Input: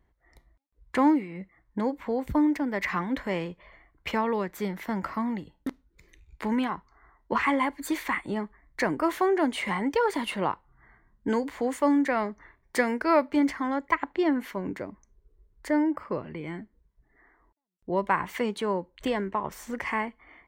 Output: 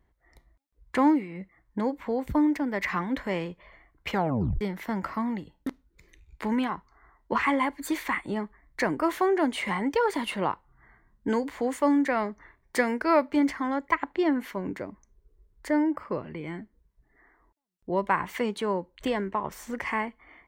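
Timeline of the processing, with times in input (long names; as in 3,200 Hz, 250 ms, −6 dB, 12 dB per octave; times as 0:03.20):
0:04.12: tape stop 0.49 s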